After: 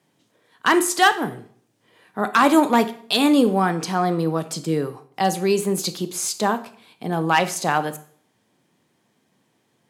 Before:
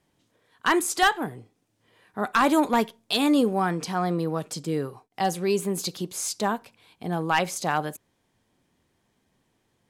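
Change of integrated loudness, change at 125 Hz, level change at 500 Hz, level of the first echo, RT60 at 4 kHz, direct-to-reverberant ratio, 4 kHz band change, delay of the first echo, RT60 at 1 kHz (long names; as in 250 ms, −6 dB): +4.5 dB, +4.5 dB, +5.0 dB, no echo audible, 0.50 s, 11.5 dB, +4.5 dB, no echo audible, 0.55 s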